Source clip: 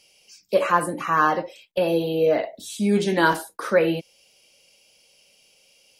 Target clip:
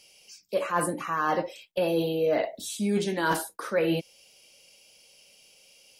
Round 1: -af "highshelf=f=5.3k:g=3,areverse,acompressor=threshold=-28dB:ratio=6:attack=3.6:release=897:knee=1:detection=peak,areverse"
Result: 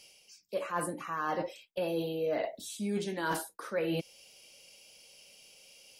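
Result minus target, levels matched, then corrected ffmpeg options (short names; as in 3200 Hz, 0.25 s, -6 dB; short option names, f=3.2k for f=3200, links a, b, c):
compressor: peak gain reduction +7 dB
-af "highshelf=f=5.3k:g=3,areverse,acompressor=threshold=-19.5dB:ratio=6:attack=3.6:release=897:knee=1:detection=peak,areverse"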